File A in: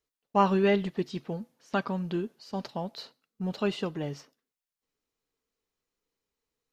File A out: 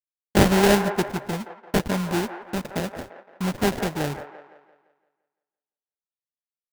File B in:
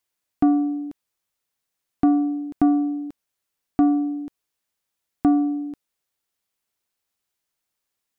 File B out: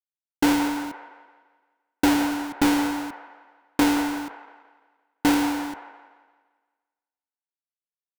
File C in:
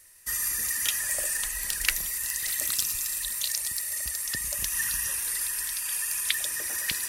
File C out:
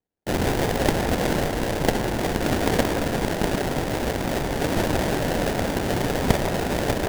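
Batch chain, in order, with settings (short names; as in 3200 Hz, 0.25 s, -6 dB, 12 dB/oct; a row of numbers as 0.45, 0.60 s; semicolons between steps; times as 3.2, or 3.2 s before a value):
gate -46 dBFS, range -40 dB; modulation noise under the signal 21 dB; sample-rate reducer 1200 Hz, jitter 20%; band-limited delay 0.171 s, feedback 44%, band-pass 940 Hz, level -7 dB; match loudness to -24 LUFS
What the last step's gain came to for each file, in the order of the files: +6.0, -2.0, +6.5 dB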